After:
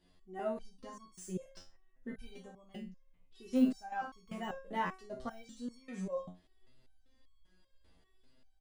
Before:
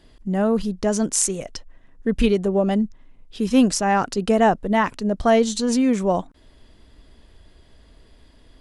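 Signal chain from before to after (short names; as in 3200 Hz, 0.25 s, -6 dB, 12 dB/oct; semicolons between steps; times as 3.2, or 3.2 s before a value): de-esser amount 75%; early reflections 17 ms -4 dB, 54 ms -7 dB; stepped resonator 5.1 Hz 90–1100 Hz; gain -7 dB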